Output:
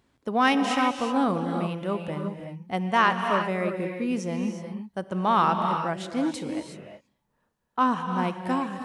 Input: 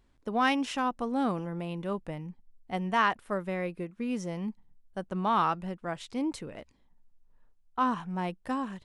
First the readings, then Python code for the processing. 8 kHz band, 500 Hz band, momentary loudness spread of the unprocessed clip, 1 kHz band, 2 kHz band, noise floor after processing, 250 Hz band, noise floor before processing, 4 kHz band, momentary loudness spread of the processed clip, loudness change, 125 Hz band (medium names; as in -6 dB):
+6.0 dB, +6.0 dB, 14 LU, +5.5 dB, +5.5 dB, -75 dBFS, +5.5 dB, -66 dBFS, +6.0 dB, 13 LU, +5.5 dB, +5.0 dB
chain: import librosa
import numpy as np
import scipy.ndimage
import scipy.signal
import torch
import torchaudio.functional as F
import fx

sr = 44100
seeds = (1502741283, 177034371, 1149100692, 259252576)

y = scipy.signal.sosfilt(scipy.signal.butter(2, 100.0, 'highpass', fs=sr, output='sos'), x)
y = fx.rev_gated(y, sr, seeds[0], gate_ms=390, shape='rising', drr_db=4.5)
y = y * librosa.db_to_amplitude(4.5)